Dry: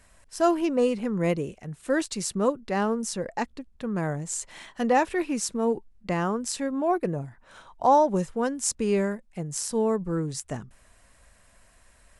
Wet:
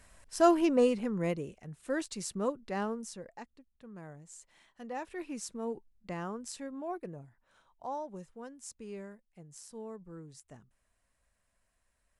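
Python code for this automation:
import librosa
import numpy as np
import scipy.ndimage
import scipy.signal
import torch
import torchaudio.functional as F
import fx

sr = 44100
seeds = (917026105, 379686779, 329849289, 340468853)

y = fx.gain(x, sr, db=fx.line((0.74, -1.5), (1.37, -8.5), (2.83, -8.5), (3.5, -19.5), (4.87, -19.5), (5.28, -12.0), (6.52, -12.0), (7.91, -19.5)))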